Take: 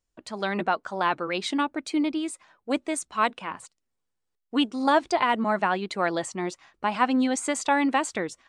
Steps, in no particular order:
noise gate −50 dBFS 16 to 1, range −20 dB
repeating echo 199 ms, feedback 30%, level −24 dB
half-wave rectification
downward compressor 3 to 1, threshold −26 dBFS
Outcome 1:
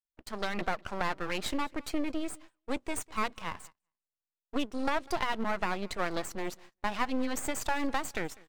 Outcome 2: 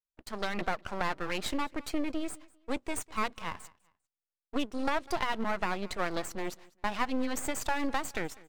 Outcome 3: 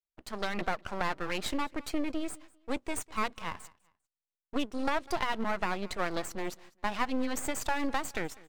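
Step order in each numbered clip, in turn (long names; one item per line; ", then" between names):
half-wave rectification, then downward compressor, then repeating echo, then noise gate
half-wave rectification, then noise gate, then repeating echo, then downward compressor
noise gate, then half-wave rectification, then repeating echo, then downward compressor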